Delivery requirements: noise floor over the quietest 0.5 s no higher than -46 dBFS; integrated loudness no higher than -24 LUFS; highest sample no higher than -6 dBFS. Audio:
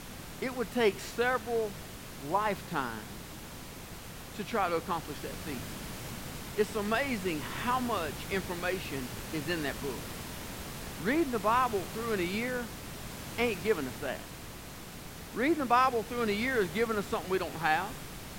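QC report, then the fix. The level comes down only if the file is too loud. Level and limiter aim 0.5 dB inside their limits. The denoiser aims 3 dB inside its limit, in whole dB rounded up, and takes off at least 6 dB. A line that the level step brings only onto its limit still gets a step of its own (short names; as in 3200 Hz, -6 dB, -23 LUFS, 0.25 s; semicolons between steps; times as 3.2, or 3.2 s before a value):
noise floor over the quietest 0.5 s -45 dBFS: fail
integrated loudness -32.5 LUFS: OK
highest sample -12.5 dBFS: OK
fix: denoiser 6 dB, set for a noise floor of -45 dBFS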